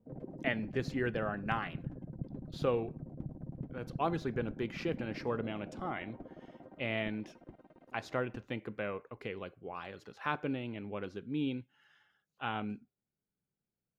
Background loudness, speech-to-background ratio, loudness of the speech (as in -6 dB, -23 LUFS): -46.5 LUFS, 8.5 dB, -38.0 LUFS